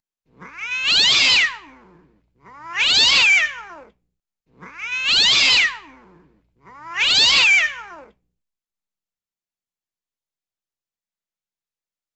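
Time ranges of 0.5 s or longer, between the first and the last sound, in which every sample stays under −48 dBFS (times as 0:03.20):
0:03.91–0:04.57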